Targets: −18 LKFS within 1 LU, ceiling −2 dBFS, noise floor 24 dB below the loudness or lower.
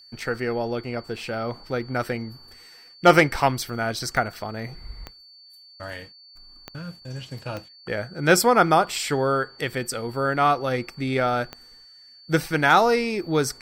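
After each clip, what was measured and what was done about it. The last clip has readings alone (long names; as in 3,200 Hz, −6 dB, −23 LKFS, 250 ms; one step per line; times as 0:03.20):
number of clicks 5; interfering tone 4,500 Hz; level of the tone −47 dBFS; integrated loudness −23.0 LKFS; sample peak −4.5 dBFS; target loudness −18.0 LKFS
→ click removal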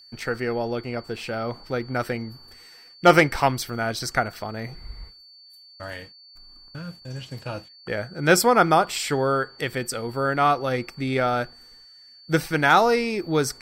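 number of clicks 0; interfering tone 4,500 Hz; level of the tone −47 dBFS
→ notch filter 4,500 Hz, Q 30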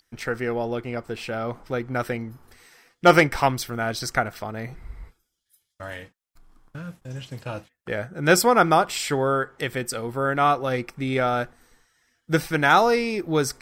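interfering tone none found; integrated loudness −23.0 LKFS; sample peak −4.5 dBFS; target loudness −18.0 LKFS
→ level +5 dB
brickwall limiter −2 dBFS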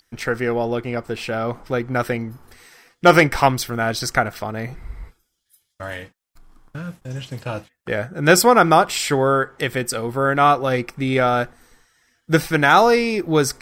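integrated loudness −18.5 LKFS; sample peak −2.0 dBFS; background noise floor −72 dBFS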